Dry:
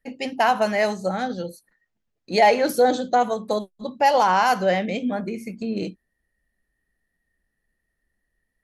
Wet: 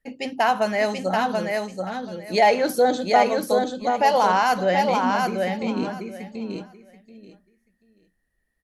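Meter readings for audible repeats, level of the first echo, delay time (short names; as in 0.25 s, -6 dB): 3, -3.5 dB, 0.733 s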